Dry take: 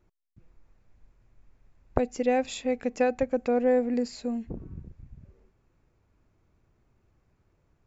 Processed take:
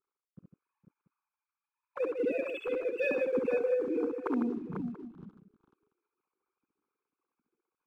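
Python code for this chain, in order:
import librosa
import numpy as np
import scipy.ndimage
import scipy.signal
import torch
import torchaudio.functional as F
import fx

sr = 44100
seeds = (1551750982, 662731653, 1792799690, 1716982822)

p1 = fx.sine_speech(x, sr)
p2 = fx.lowpass(p1, sr, hz=1500.0, slope=6)
p3 = p2 + 0.87 * np.pad(p2, (int(0.8 * sr / 1000.0), 0))[:len(p2)]
p4 = fx.rider(p3, sr, range_db=10, speed_s=0.5)
p5 = fx.leveller(p4, sr, passes=1)
p6 = fx.level_steps(p5, sr, step_db=10)
p7 = fx.rotary_switch(p6, sr, hz=0.85, then_hz=5.0, switch_at_s=4.89)
p8 = p7 + fx.echo_multitap(p7, sr, ms=(51, 68, 151, 461, 494, 685), db=(-14.0, -3.5, -8.0, -16.5, -8.0, -19.0), dry=0)
y = p8 * librosa.db_to_amplitude(1.5)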